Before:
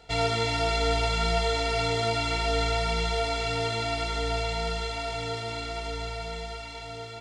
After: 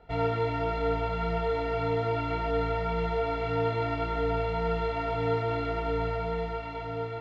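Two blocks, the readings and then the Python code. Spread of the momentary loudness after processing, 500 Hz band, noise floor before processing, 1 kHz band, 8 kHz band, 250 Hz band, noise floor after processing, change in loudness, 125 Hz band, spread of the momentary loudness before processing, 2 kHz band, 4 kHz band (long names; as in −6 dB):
3 LU, +1.5 dB, −40 dBFS, −0.5 dB, below −25 dB, +2.5 dB, −36 dBFS, −2.0 dB, 0.0 dB, 10 LU, −6.5 dB, −14.5 dB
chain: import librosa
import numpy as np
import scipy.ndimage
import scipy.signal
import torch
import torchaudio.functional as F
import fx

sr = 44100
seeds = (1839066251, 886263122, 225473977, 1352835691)

y = scipy.signal.sosfilt(scipy.signal.butter(2, 1500.0, 'lowpass', fs=sr, output='sos'), x)
y = fx.rider(y, sr, range_db=5, speed_s=0.5)
y = fx.doubler(y, sr, ms=24.0, db=-5.0)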